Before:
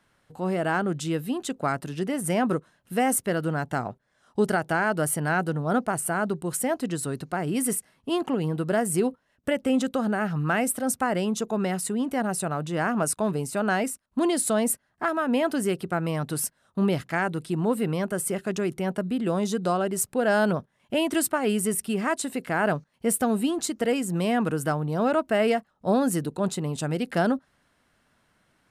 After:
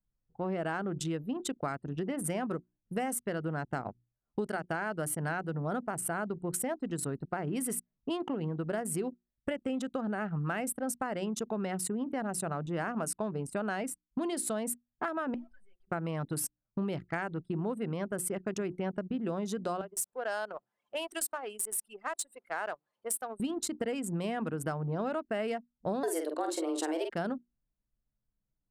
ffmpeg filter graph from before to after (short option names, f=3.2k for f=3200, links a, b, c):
-filter_complex "[0:a]asettb=1/sr,asplit=3[a][b][c];[a]atrim=end=15.344[d];[b]atrim=start=15.34:end=15.88,asetpts=PTS-STARTPTS,afade=t=in:d=0.004:c=qsin,afade=t=out:st=0.536:d=0.004:c=qsin,highpass=f=730:w=0.5412,highpass=f=730:w=1.3066,aeval=exprs='(tanh(158*val(0)+0.6)-tanh(0.6))/158':c=same[e];[c]atrim=start=15.876[f];[d][e]acrossfade=d=0.004:c1=hsin:c2=qsin[g];[g][f]acrossfade=d=0.004:c1=qsin:c2=hsin,asettb=1/sr,asplit=3[h][i][j];[h]atrim=end=19.814[k];[i]atrim=start=19.81:end=23.4,asetpts=PTS-STARTPTS,afade=t=in:d=0.004:c=qsin,afade=t=out:st=3.586:d=0.004:c=qsin,aeval=exprs='val(0)+0.5*0.0126*sgn(val(0))':c=same,highpass=860,equalizer=f=2k:t=o:w=2:g=-6.5[l];[j]atrim=start=23.396[m];[k][l]acrossfade=d=0.004:c1=hsin:c2=qsin[n];[n][m]acrossfade=d=0.004:c1=qsin:c2=hsin,asettb=1/sr,asplit=3[o][p][q];[o]atrim=end=26.034[r];[p]atrim=start=26.03:end=27.1,asetpts=PTS-STARTPTS,afade=t=in:d=0.004:c=qsin,afade=t=out:st=1.066:d=0.004:c=qsin,acontrast=80,afreqshift=160,asplit=2[s][t];[t]adelay=46,volume=-5dB[u];[s][u]amix=inputs=2:normalize=0,atrim=end_sample=47187[v];[q]atrim=start=27.096[w];[r][v]acrossfade=d=0.004:c1=hsin:c2=qsin[x];[x][w]acrossfade=d=0.004:c1=qsin:c2=hsin,bandreject=f=60:t=h:w=6,bandreject=f=120:t=h:w=6,bandreject=f=180:t=h:w=6,bandreject=f=240:t=h:w=6,bandreject=f=300:t=h:w=6,bandreject=f=360:t=h:w=6,anlmdn=10,acompressor=threshold=-31dB:ratio=6"